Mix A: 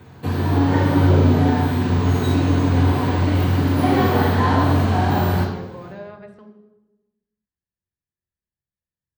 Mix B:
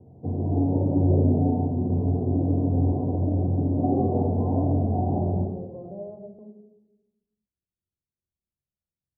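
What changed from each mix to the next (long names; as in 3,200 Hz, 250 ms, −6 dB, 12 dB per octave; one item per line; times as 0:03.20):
background −5.0 dB
master: add elliptic low-pass filter 710 Hz, stop band 60 dB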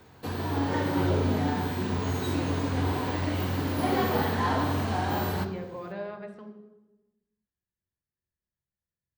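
background: send −7.0 dB
master: remove elliptic low-pass filter 710 Hz, stop band 60 dB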